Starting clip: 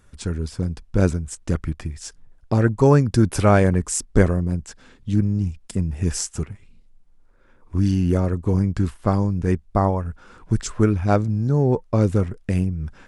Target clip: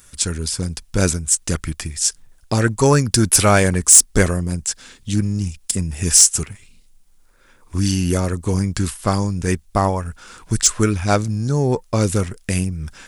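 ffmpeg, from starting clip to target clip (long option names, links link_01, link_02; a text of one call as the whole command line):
ffmpeg -i in.wav -af "crystalizer=i=8.5:c=0,asoftclip=type=tanh:threshold=-1.5dB" out.wav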